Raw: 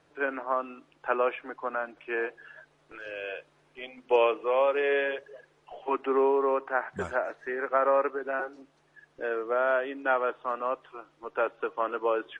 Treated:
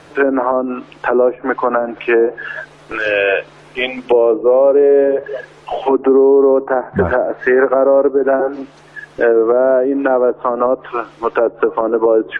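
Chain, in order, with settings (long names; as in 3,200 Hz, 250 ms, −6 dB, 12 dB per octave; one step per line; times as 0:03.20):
treble cut that deepens with the level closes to 410 Hz, closed at −26 dBFS
boost into a limiter +26 dB
level −2.5 dB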